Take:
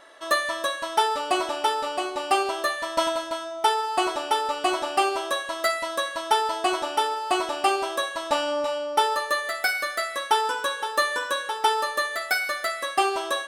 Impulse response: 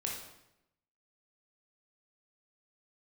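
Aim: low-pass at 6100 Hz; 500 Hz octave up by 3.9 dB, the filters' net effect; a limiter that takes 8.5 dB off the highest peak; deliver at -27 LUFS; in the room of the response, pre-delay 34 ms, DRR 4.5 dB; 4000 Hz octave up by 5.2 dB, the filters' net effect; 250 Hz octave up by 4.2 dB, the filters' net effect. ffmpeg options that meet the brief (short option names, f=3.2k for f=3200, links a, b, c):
-filter_complex "[0:a]lowpass=6.1k,equalizer=f=250:t=o:g=4,equalizer=f=500:t=o:g=4,equalizer=f=4k:t=o:g=7,alimiter=limit=-14.5dB:level=0:latency=1,asplit=2[a][b];[1:a]atrim=start_sample=2205,adelay=34[c];[b][c]afir=irnorm=-1:irlink=0,volume=-6.5dB[d];[a][d]amix=inputs=2:normalize=0,volume=-4.5dB"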